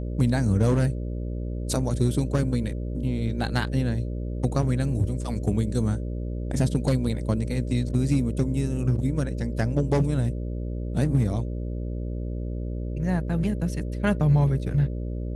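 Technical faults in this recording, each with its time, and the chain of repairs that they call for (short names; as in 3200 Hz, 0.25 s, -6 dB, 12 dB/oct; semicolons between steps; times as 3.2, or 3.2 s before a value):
buzz 60 Hz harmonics 10 -30 dBFS
2.38 gap 2.2 ms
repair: de-hum 60 Hz, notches 10; interpolate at 2.38, 2.2 ms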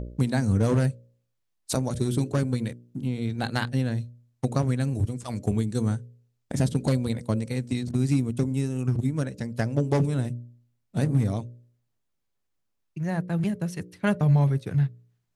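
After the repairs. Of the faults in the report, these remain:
none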